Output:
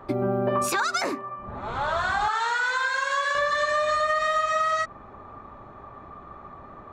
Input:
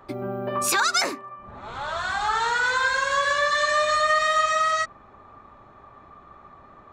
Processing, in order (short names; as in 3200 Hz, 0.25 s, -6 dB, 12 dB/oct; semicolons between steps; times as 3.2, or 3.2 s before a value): 2.28–3.35 HPF 1300 Hz 6 dB/oct; compressor, threshold -25 dBFS, peak gain reduction 8 dB; high shelf 2000 Hz -9 dB; gain +6.5 dB